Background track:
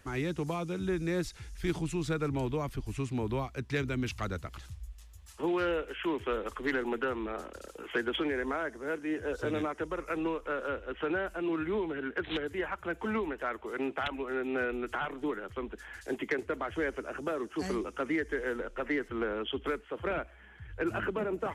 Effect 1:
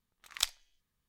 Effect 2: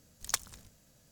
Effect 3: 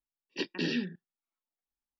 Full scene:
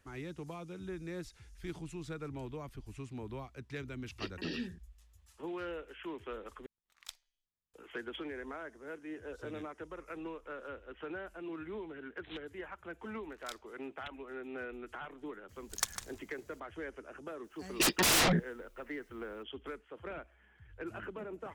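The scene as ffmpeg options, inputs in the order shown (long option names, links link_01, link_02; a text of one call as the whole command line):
ffmpeg -i bed.wav -i cue0.wav -i cue1.wav -i cue2.wav -filter_complex "[3:a]asplit=2[link_01][link_02];[1:a]asplit=2[link_03][link_04];[0:a]volume=-10.5dB[link_05];[link_04]flanger=delay=22.5:depth=5:speed=3[link_06];[2:a]asplit=2[link_07][link_08];[link_08]adelay=151.6,volume=-8dB,highshelf=frequency=4000:gain=-3.41[link_09];[link_07][link_09]amix=inputs=2:normalize=0[link_10];[link_02]aeval=exprs='0.106*sin(PI/2*10*val(0)/0.106)':channel_layout=same[link_11];[link_05]asplit=2[link_12][link_13];[link_12]atrim=end=6.664[link_14];[link_03]atrim=end=1.08,asetpts=PTS-STARTPTS,volume=-17dB[link_15];[link_13]atrim=start=7.736[link_16];[link_01]atrim=end=1.99,asetpts=PTS-STARTPTS,volume=-7.5dB,afade=type=in:duration=0.004:curve=hsin,afade=type=out:start_time=1.986:duration=0.004:curve=hsin,adelay=3830[link_17];[link_06]atrim=end=1.08,asetpts=PTS-STARTPTS,volume=-13.5dB,afade=type=in:duration=0.004:curve=hsin,afade=type=out:start_time=1.076:duration=0.004:curve=hsin,adelay=13060[link_18];[link_10]atrim=end=1.11,asetpts=PTS-STARTPTS,volume=-2dB,afade=type=in:duration=0.004:curve=hsin,afade=type=out:start_time=1.106:duration=0.004:curve=hsin,adelay=15490[link_19];[link_11]atrim=end=1.99,asetpts=PTS-STARTPTS,volume=-4dB,afade=type=in:duration=0.004:curve=hsin,afade=type=out:start_time=1.986:duration=0.004:curve=hsin,adelay=17440[link_20];[link_14][link_15]acrossfade=duration=0.004:curve1=hsin:curve2=hsin[link_21];[link_21][link_16]acrossfade=duration=0.004:curve1=hsin:curve2=hsin[link_22];[link_22][link_17][link_18][link_19][link_20]amix=inputs=5:normalize=0" out.wav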